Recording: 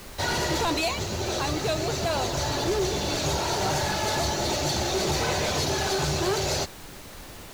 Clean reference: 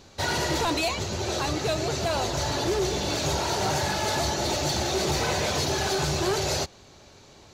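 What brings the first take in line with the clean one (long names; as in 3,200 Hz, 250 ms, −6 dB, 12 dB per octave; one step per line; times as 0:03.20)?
noise reduction from a noise print 9 dB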